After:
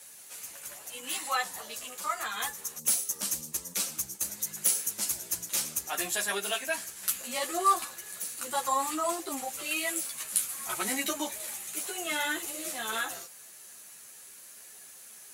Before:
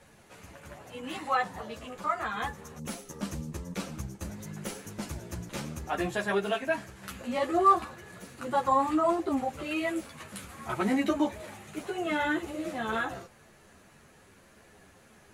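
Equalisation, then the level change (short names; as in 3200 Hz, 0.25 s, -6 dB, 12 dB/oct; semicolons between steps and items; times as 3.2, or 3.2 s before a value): RIAA curve recording; high shelf 3300 Hz +11 dB; -4.5 dB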